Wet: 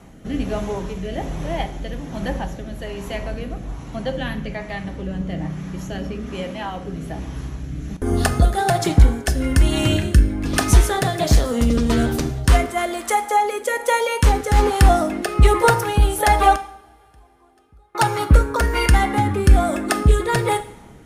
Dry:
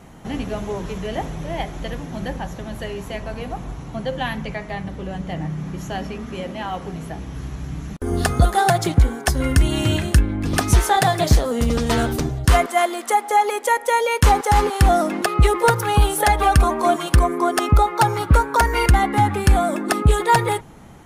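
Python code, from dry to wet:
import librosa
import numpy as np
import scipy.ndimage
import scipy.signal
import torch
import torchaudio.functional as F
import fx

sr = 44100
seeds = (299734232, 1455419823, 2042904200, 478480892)

y = fx.gate_flip(x, sr, shuts_db=-18.0, range_db=-38, at=(16.55, 17.95))
y = fx.rotary(y, sr, hz=1.2)
y = fx.rev_double_slope(y, sr, seeds[0], early_s=0.61, late_s=3.5, knee_db=-26, drr_db=9.5)
y = F.gain(torch.from_numpy(y), 2.0).numpy()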